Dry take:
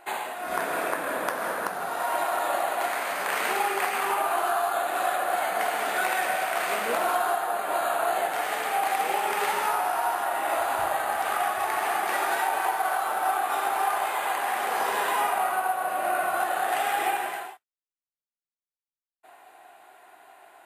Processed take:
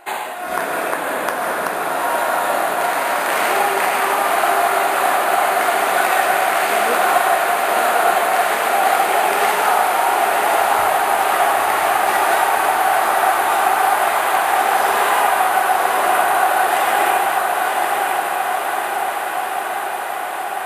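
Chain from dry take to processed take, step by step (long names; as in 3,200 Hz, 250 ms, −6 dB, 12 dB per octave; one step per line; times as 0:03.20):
feedback delay with all-pass diffusion 1,013 ms, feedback 77%, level −3 dB
level +7 dB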